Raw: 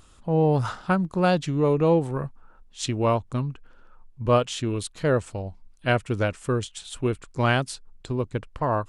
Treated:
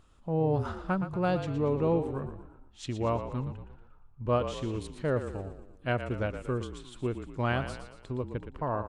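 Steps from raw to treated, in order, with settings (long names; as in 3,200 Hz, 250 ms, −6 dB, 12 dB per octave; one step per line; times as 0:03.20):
high-shelf EQ 3,800 Hz −10.5 dB
echo with shifted repeats 117 ms, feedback 50%, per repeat −38 Hz, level −9.5 dB
level −7 dB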